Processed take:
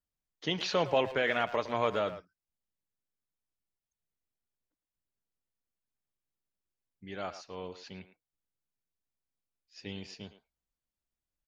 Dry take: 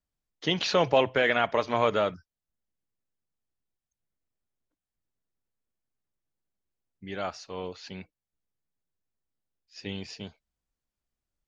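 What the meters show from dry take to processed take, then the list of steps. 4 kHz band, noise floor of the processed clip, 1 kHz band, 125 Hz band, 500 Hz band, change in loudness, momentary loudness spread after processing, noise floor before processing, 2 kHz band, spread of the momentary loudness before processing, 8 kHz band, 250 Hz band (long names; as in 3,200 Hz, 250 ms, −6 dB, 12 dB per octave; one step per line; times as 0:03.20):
−5.5 dB, below −85 dBFS, −5.5 dB, −5.5 dB, −5.5 dB, −5.5 dB, 20 LU, below −85 dBFS, −5.5 dB, 19 LU, can't be measured, −5.5 dB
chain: far-end echo of a speakerphone 110 ms, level −12 dB
level −5.5 dB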